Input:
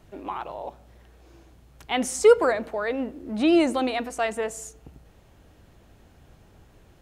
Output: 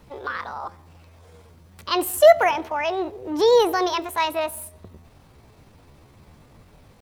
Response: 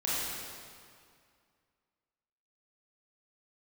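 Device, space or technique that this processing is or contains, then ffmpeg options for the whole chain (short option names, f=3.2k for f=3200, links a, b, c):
chipmunk voice: -af "asetrate=62367,aresample=44100,atempo=0.707107,volume=3dB"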